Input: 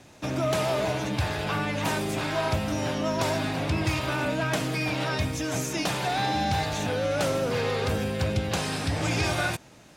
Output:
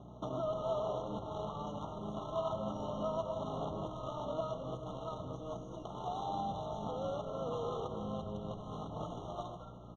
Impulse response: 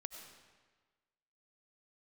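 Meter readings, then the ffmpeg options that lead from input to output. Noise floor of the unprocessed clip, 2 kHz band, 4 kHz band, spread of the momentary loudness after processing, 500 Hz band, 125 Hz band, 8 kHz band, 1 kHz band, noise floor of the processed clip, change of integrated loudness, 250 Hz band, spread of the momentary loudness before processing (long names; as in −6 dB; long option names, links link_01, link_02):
−52 dBFS, below −40 dB, −21.0 dB, 7 LU, −9.5 dB, −15.5 dB, −27.0 dB, −10.0 dB, −49 dBFS, −12.5 dB, −13.5 dB, 3 LU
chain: -filter_complex "[0:a]tiltshelf=frequency=1200:gain=-6.5,aecho=1:1:4.7:0.35,bandreject=frequency=196.7:width_type=h:width=4,bandreject=frequency=393.4:width_type=h:width=4,bandreject=frequency=590.1:width_type=h:width=4,bandreject=frequency=786.8:width_type=h:width=4,bandreject=frequency=983.5:width_type=h:width=4,bandreject=frequency=1180.2:width_type=h:width=4,bandreject=frequency=1376.9:width_type=h:width=4,bandreject=frequency=1573.6:width_type=h:width=4,bandreject=frequency=1770.3:width_type=h:width=4,bandreject=frequency=1967:width_type=h:width=4,bandreject=frequency=2163.7:width_type=h:width=4,bandreject=frequency=2360.4:width_type=h:width=4,bandreject=frequency=2557.1:width_type=h:width=4,bandreject=frequency=2753.8:width_type=h:width=4,bandreject=frequency=2950.5:width_type=h:width=4,bandreject=frequency=3147.2:width_type=h:width=4,bandreject=frequency=3343.9:width_type=h:width=4,bandreject=frequency=3540.6:width_type=h:width=4,bandreject=frequency=3737.3:width_type=h:width=4,bandreject=frequency=3934:width_type=h:width=4,bandreject=frequency=4130.7:width_type=h:width=4,bandreject=frequency=4327.4:width_type=h:width=4,bandreject=frequency=4524.1:width_type=h:width=4,bandreject=frequency=4720.8:width_type=h:width=4,bandreject=frequency=4917.5:width_type=h:width=4,bandreject=frequency=5114.2:width_type=h:width=4,bandreject=frequency=5310.9:width_type=h:width=4,bandreject=frequency=5507.6:width_type=h:width=4,bandreject=frequency=5704.3:width_type=h:width=4,bandreject=frequency=5901:width_type=h:width=4,bandreject=frequency=6097.7:width_type=h:width=4,bandreject=frequency=6294.4:width_type=h:width=4,bandreject=frequency=6491.1:width_type=h:width=4,acompressor=threshold=-34dB:ratio=6,alimiter=level_in=7.5dB:limit=-24dB:level=0:latency=1:release=453,volume=-7.5dB,aeval=exprs='val(0)+0.00224*(sin(2*PI*60*n/s)+sin(2*PI*2*60*n/s)/2+sin(2*PI*3*60*n/s)/3+sin(2*PI*4*60*n/s)/4+sin(2*PI*5*60*n/s)/5)':channel_layout=same,adynamicsmooth=sensitivity=3:basefreq=510,crystalizer=i=2.5:c=0,highpass=110,equalizer=frequency=260:width_type=q:width=4:gain=-4,equalizer=frequency=700:width_type=q:width=4:gain=5,equalizer=frequency=1100:width_type=q:width=4:gain=5,lowpass=frequency=7200:width=0.5412,lowpass=frequency=7200:width=1.3066,asplit=5[link_01][link_02][link_03][link_04][link_05];[link_02]adelay=220,afreqshift=-110,volume=-12dB[link_06];[link_03]adelay=440,afreqshift=-220,volume=-20.6dB[link_07];[link_04]adelay=660,afreqshift=-330,volume=-29.3dB[link_08];[link_05]adelay=880,afreqshift=-440,volume=-37.9dB[link_09];[link_01][link_06][link_07][link_08][link_09]amix=inputs=5:normalize=0,asplit=2[link_10][link_11];[1:a]atrim=start_sample=2205[link_12];[link_11][link_12]afir=irnorm=-1:irlink=0,volume=3dB[link_13];[link_10][link_13]amix=inputs=2:normalize=0,afftfilt=real='re*eq(mod(floor(b*sr/1024/1400),2),0)':imag='im*eq(mod(floor(b*sr/1024/1400),2),0)':win_size=1024:overlap=0.75,volume=1dB"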